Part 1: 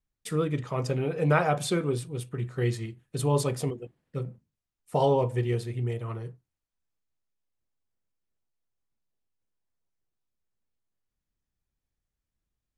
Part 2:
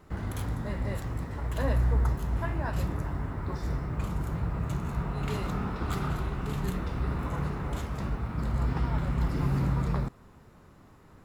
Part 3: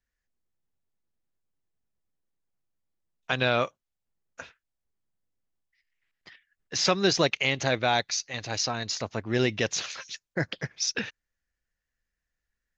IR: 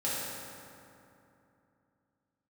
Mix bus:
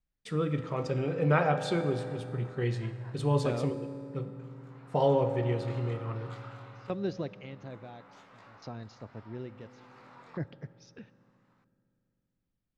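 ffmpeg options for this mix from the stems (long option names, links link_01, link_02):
-filter_complex "[0:a]volume=-4dB,asplit=2[link_01][link_02];[link_02]volume=-14.5dB[link_03];[1:a]highpass=700,flanger=delay=17.5:depth=6.3:speed=0.25,adelay=400,volume=-8dB,afade=type=in:start_time=4.46:duration=0.61:silence=0.446684,asplit=2[link_04][link_05];[link_05]volume=-23.5dB[link_06];[2:a]tiltshelf=frequency=730:gain=9.5,aeval=exprs='val(0)*pow(10,-20*if(lt(mod(0.58*n/s,1),2*abs(0.58)/1000),1-mod(0.58*n/s,1)/(2*abs(0.58)/1000),(mod(0.58*n/s,1)-2*abs(0.58)/1000)/(1-2*abs(0.58)/1000))/20)':channel_layout=same,volume=-12.5dB,asplit=3[link_07][link_08][link_09];[link_08]volume=-23.5dB[link_10];[link_09]apad=whole_len=513411[link_11];[link_04][link_11]sidechaincompress=threshold=-46dB:ratio=8:attack=47:release=1030[link_12];[3:a]atrim=start_sample=2205[link_13];[link_03][link_06][link_10]amix=inputs=3:normalize=0[link_14];[link_14][link_13]afir=irnorm=-1:irlink=0[link_15];[link_01][link_12][link_07][link_15]amix=inputs=4:normalize=0,lowpass=4800"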